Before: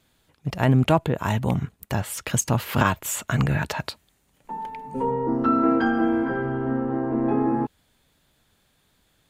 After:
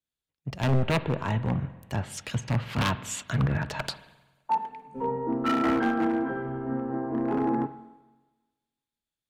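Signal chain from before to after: low-pass that closes with the level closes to 2.1 kHz, closed at -17.5 dBFS; 3.79–4.58 s: high-order bell 920 Hz +12.5 dB; wavefolder -15.5 dBFS; spring tank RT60 2.3 s, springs 44/52 ms, chirp 30 ms, DRR 12 dB; three bands expanded up and down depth 70%; trim -3.5 dB

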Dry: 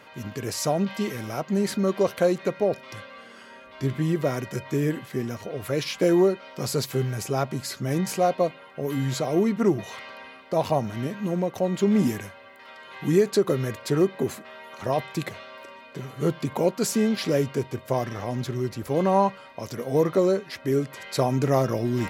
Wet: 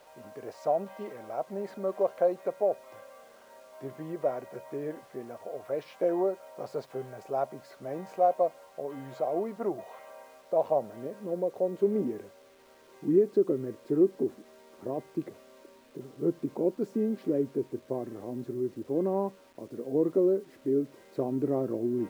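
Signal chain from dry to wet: band-pass sweep 660 Hz -> 330 Hz, 9.98–13.19 s; bit crusher 10-bit

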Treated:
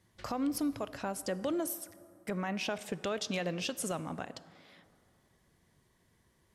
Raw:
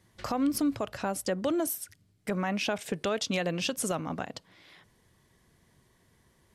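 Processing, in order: plate-style reverb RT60 2.5 s, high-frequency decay 0.45×, DRR 15 dB; trim -5 dB

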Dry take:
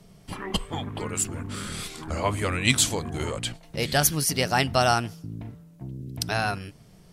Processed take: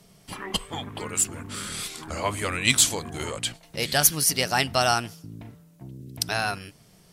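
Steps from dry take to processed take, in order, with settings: tilt EQ +1.5 dB/octave; in parallel at -11 dB: one-sided clip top -19 dBFS; on the sum: trim -2.5 dB

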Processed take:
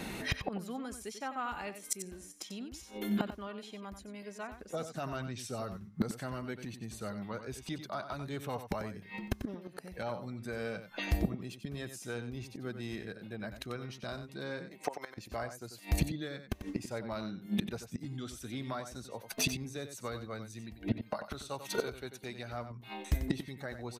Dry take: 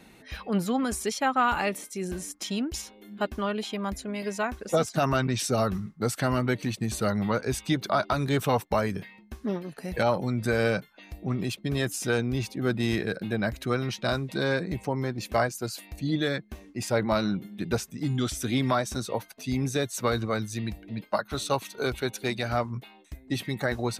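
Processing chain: 14.68–15.17 s: high-pass 360 Hz -> 970 Hz 12 dB/octave; inverted gate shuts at -28 dBFS, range -26 dB; saturation -29.5 dBFS, distortion -21 dB; delay 92 ms -10 dB; trim +12 dB

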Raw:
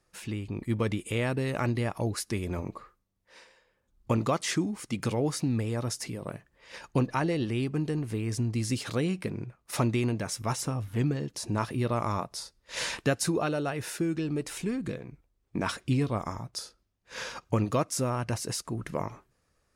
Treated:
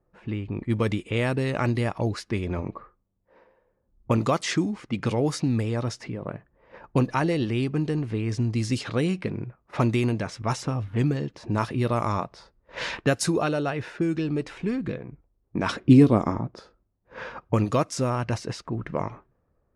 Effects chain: level-controlled noise filter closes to 770 Hz, open at -23 dBFS; 15.69–16.60 s: peaking EQ 290 Hz +11 dB 2 oct; trim +4 dB

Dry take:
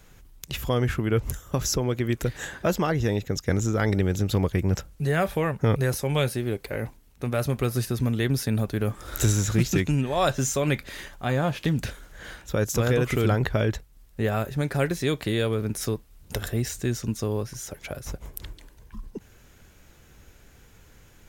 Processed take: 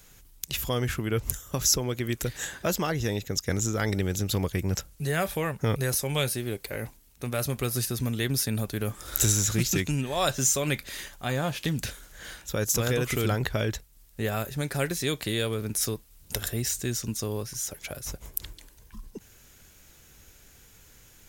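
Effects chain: treble shelf 3.2 kHz +12 dB; trim -4.5 dB

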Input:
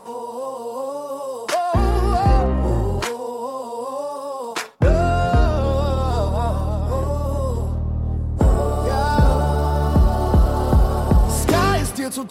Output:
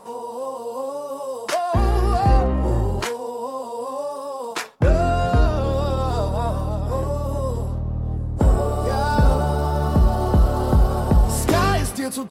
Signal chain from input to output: doubling 19 ms -13 dB; trim -1.5 dB

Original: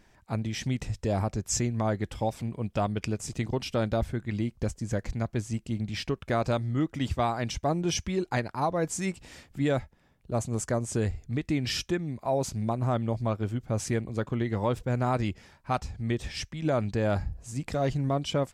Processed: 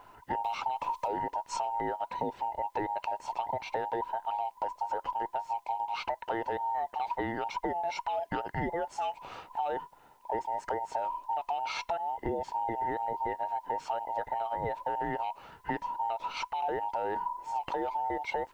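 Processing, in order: every band turned upside down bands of 1 kHz; low-pass 2.4 kHz 12 dB/octave; peaking EQ 210 Hz -3.5 dB 0.37 oct; in parallel at 0 dB: peak limiter -24 dBFS, peak gain reduction 9 dB; on the sum: compression, threshold -30 dBFS, peak gain reduction 11 dB; added noise white -74 dBFS; 0.44–1.08 s: three bands compressed up and down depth 70%

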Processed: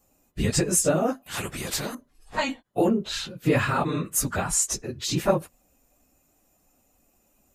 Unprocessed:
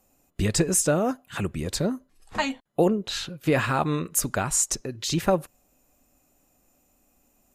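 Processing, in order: phase randomisation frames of 50 ms; 1.26–1.95 s: spectrum-flattening compressor 2:1

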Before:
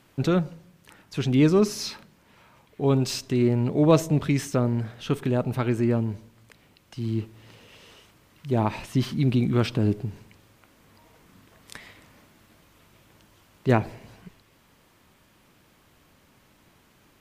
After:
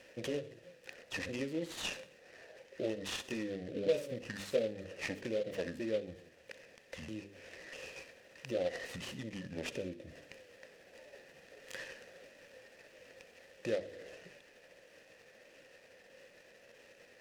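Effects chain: sawtooth pitch modulation -7.5 st, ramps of 644 ms; treble shelf 4.6 kHz +11.5 dB; hum notches 50/100/150/200/250/300/350/400/450 Hz; compression 6:1, threshold -31 dBFS, peak gain reduction 15.5 dB; dynamic bell 1.1 kHz, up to -8 dB, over -56 dBFS, Q 0.89; vowel filter e; thinning echo 63 ms, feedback 48%, level -16 dB; delay time shaken by noise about 2.6 kHz, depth 0.033 ms; trim +14 dB

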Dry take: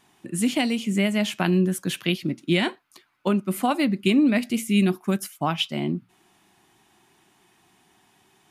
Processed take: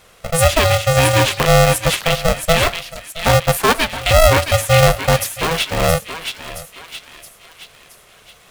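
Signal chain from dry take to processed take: 3.57–4.11 s: Bessel high-pass 580 Hz, order 8; in parallel at -1.5 dB: gain riding within 5 dB 0.5 s; on the sum: peak limiter -9 dBFS, peak gain reduction 7.5 dB; 5.34–5.80 s: overload inside the chain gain 19.5 dB; on a send: thinning echo 671 ms, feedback 50%, high-pass 1.1 kHz, level -5 dB; on the sum: polarity switched at an audio rate 330 Hz; trim +5 dB

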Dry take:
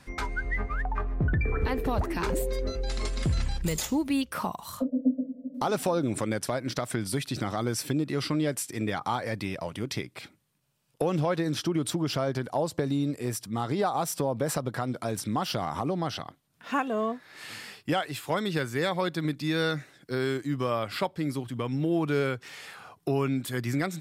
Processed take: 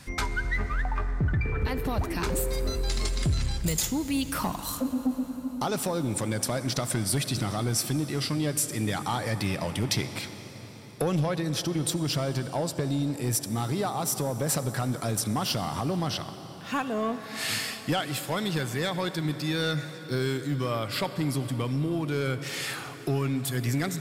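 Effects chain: gain riding 0.5 s; peaking EQ 110 Hz +7 dB 1.9 oct; reverberation RT60 5.5 s, pre-delay 58 ms, DRR 11 dB; saturation -16.5 dBFS, distortion -19 dB; treble shelf 2.8 kHz +9.5 dB; trim -2 dB

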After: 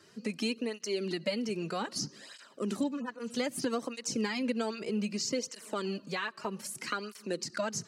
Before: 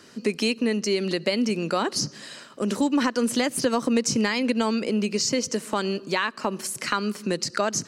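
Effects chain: 2.83–3.34 s: harmonic-percussive separation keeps harmonic; cancelling through-zero flanger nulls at 0.63 Hz, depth 4.2 ms; trim -6.5 dB

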